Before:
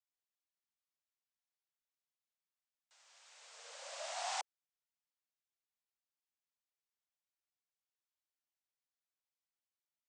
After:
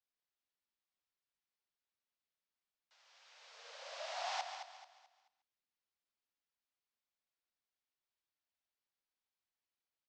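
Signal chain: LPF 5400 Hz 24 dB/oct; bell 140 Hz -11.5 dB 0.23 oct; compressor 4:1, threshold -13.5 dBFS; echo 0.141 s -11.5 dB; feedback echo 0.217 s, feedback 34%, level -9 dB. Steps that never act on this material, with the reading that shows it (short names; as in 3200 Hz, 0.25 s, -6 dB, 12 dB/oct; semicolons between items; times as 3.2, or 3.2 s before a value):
bell 140 Hz: input band starts at 430 Hz; compressor, threshold -13.5 dBFS: input peak -27.5 dBFS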